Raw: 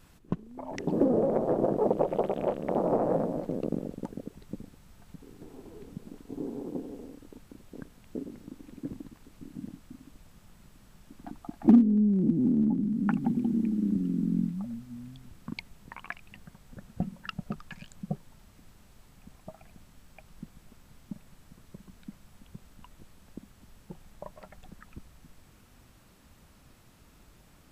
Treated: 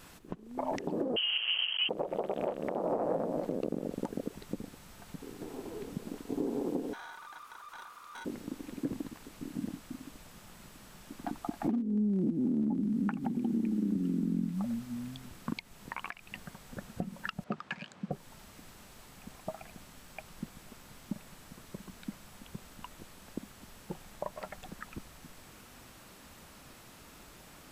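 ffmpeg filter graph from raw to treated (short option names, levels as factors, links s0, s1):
-filter_complex "[0:a]asettb=1/sr,asplit=3[s0][s1][s2];[s0]atrim=end=1.164[s3];[s1]atrim=start=1.16:end=1.89,asetpts=PTS-STARTPTS,afade=t=in:d=0.004:c=qsin,afade=t=out:st=0.726:d=0.004:c=qsin,highpass=f=220:p=1,acrusher=bits=5:mix=0:aa=0.5,lowpass=f=2900:t=q:w=0.5098,lowpass=f=2900:t=q:w=0.6013,lowpass=f=2900:t=q:w=0.9,lowpass=f=2900:t=q:w=2.563,afreqshift=-3400[s4];[s2]atrim=start=1.886[s5];[s3][s4]acrossfade=d=0.004:c1=hsin:c2=qsin[s6];[s6][s5]acrossfade=d=0.004:c1=qsin:c2=hsin,asettb=1/sr,asplit=3[s7][s8][s9];[s7]atrim=end=6.934[s10];[s8]atrim=start=6.93:end=8.25,asetpts=PTS-STARTPTS,afade=t=in:d=0.004:c=qsin,afade=t=out:st=1.316:d=0.004:c=qsin,aeval=exprs='val(0)*sin(2*PI*1200*n/s)':c=same,aeval=exprs='(tanh(355*val(0)+0.2)-tanh(0.2))/355':c=same[s11];[s9]atrim=start=8.246[s12];[s10][s11]acrossfade=d=0.004:c1=hsin:c2=qsin[s13];[s13][s12]acrossfade=d=0.004:c1=qsin:c2=hsin,asettb=1/sr,asplit=3[s14][s15][s16];[s14]atrim=end=17.444[s17];[s15]atrim=start=17.44:end=18.12,asetpts=PTS-STARTPTS,afade=t=in:d=0.004:c=qsin,afade=t=out:st=0.676:d=0.004:c=qsin,adynamicsmooth=sensitivity=5.5:basefreq=3500,highpass=160[s18];[s16]atrim=start=18.116[s19];[s17][s18]acrossfade=d=0.004:c1=hsin:c2=qsin[s20];[s20][s19]acrossfade=d=0.004:c1=qsin:c2=hsin,lowshelf=f=190:g=-11.5,acompressor=threshold=0.0141:ratio=4,alimiter=level_in=1.88:limit=0.0631:level=0:latency=1:release=269,volume=0.531,volume=2.66"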